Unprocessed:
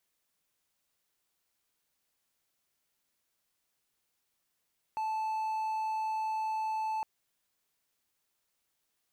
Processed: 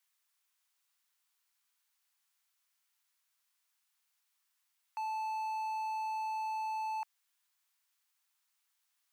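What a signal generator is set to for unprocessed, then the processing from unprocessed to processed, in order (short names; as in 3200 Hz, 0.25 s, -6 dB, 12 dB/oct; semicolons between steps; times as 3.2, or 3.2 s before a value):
tone triangle 875 Hz -28.5 dBFS 2.06 s
HPF 890 Hz 24 dB/oct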